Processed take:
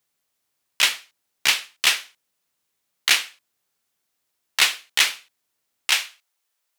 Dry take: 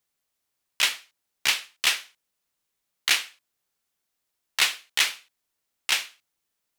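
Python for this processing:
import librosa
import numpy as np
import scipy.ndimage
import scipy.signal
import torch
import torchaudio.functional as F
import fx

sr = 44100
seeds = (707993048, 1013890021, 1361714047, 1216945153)

y = fx.highpass(x, sr, hz=fx.steps((0.0, 68.0), (5.9, 540.0)), slope=12)
y = y * librosa.db_to_amplitude(4.0)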